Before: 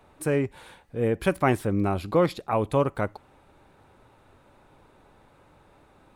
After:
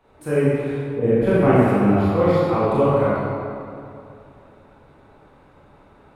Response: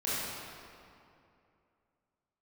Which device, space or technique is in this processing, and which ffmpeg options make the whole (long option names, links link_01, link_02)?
swimming-pool hall: -filter_complex "[1:a]atrim=start_sample=2205[link_01];[0:a][link_01]afir=irnorm=-1:irlink=0,highshelf=frequency=5000:gain=-8,asettb=1/sr,asplit=3[link_02][link_03][link_04];[link_02]atrim=end=0.984[link_05];[link_03]atrim=start=0.98:end=1.68,asetpts=PTS-STARTPTS,afade=type=in:duration=0.004:curve=qsin,afade=type=out:start_time=0.696:duration=0.004:curve=qsin,tiltshelf=frequency=970:gain=4[link_06];[link_04]atrim=start=1.676[link_07];[link_05][link_06]acrossfade=duration=0.004:curve1=hsin:curve2=qsin[link_08];[link_08][link_07]acrossfade=duration=0.004:curve1=qsin:curve2=hsin,volume=-2dB"